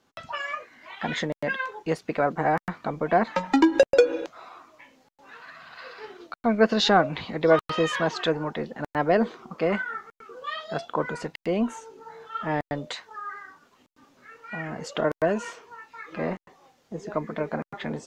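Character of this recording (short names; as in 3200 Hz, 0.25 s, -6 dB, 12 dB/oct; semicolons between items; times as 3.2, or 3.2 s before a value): noise floor -92 dBFS; spectral tilt -3.5 dB/oct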